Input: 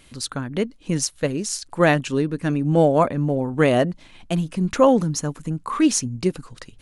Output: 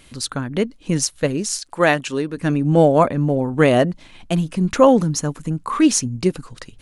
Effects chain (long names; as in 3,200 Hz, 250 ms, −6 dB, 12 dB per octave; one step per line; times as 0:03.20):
0:01.59–0:02.37: low-shelf EQ 240 Hz −11.5 dB
level +3 dB